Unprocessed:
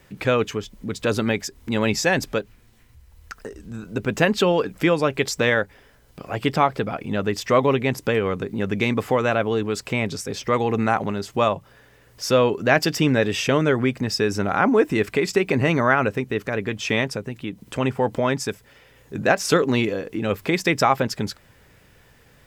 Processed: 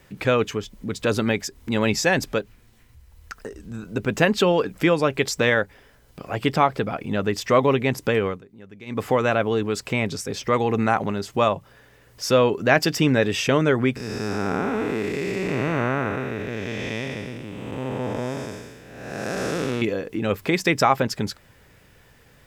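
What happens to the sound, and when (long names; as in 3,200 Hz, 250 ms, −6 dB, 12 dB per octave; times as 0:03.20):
0:08.24–0:09.04: duck −20 dB, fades 0.18 s
0:13.96–0:19.82: spectrum smeared in time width 455 ms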